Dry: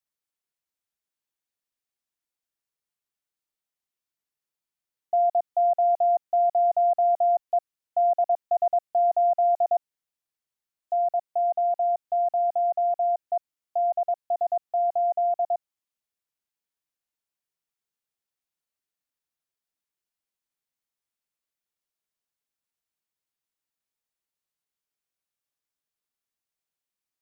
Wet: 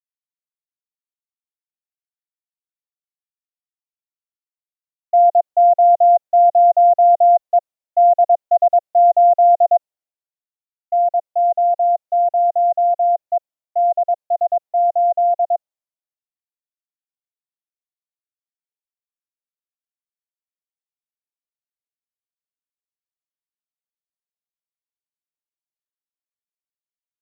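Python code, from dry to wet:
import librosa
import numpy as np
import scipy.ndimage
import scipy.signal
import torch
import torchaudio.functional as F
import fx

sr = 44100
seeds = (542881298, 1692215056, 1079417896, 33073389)

y = fx.peak_eq(x, sr, hz=640.0, db=11.5, octaves=0.99)
y = fx.band_widen(y, sr, depth_pct=70)
y = F.gain(torch.from_numpy(y), -1.0).numpy()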